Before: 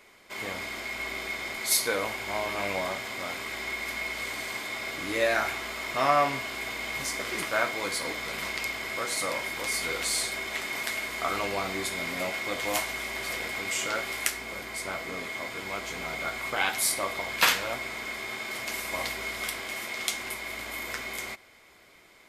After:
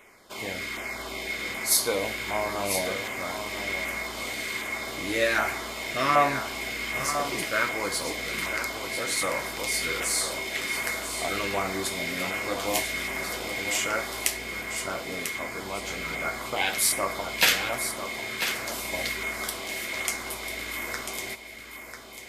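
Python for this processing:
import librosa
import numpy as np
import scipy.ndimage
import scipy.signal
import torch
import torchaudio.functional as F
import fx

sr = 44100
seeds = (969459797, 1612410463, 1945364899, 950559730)

p1 = fx.filter_lfo_notch(x, sr, shape='saw_down', hz=1.3, low_hz=580.0, high_hz=4800.0, q=1.3)
p2 = p1 + fx.echo_single(p1, sr, ms=994, db=-8.5, dry=0)
y = p2 * librosa.db_to_amplitude(3.0)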